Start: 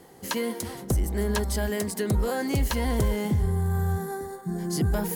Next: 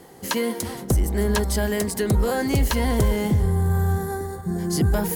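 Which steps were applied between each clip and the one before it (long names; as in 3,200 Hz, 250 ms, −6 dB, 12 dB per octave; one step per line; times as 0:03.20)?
delay with a low-pass on its return 346 ms, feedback 69%, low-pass 630 Hz, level −17.5 dB
level +4.5 dB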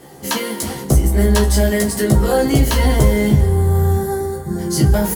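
double-tracking delay 15 ms −3.5 dB
convolution reverb, pre-delay 3 ms, DRR 2 dB
level +2.5 dB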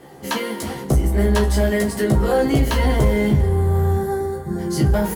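bass and treble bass −2 dB, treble −8 dB
in parallel at −4 dB: hard clipping −11.5 dBFS, distortion −14 dB
on the sum: level −5.5 dB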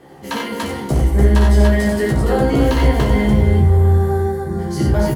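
high-shelf EQ 6,000 Hz −7 dB
on a send: loudspeakers that aren't time-aligned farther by 20 metres −4 dB, 31 metres −5 dB, 99 metres −2 dB
on the sum: level −1 dB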